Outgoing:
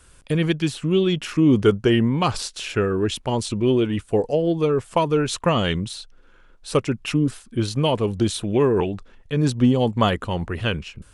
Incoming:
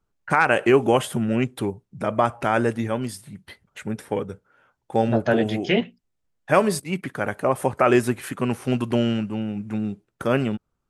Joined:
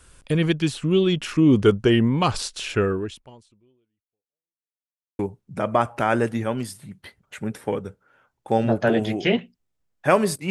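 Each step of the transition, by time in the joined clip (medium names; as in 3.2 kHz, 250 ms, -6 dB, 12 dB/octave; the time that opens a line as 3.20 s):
outgoing
2.90–4.73 s: fade out exponential
4.73–5.19 s: mute
5.19 s: go over to incoming from 1.63 s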